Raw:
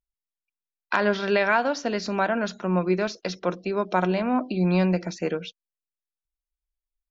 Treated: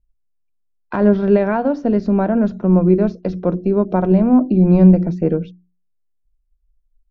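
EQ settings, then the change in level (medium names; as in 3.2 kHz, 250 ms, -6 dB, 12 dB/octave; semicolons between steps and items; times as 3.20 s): tilt EQ -3.5 dB/octave; tilt shelf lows +7.5 dB, about 900 Hz; hum notches 60/120/180/240/300/360 Hz; 0.0 dB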